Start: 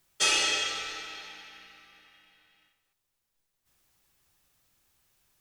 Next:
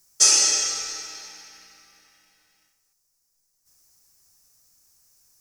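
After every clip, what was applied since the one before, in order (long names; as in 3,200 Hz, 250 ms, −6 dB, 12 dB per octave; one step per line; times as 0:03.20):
high shelf with overshoot 4,300 Hz +9 dB, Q 3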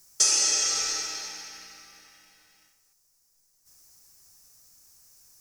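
downward compressor 3 to 1, threshold −26 dBFS, peak gain reduction 11 dB
level +4 dB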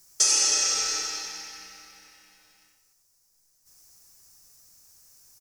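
single-tap delay 91 ms −6.5 dB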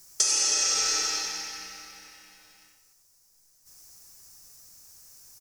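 downward compressor 6 to 1, threshold −25 dBFS, peak gain reduction 8.5 dB
level +4 dB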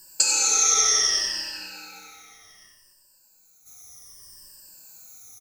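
rippled gain that drifts along the octave scale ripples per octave 1.3, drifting −0.65 Hz, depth 20 dB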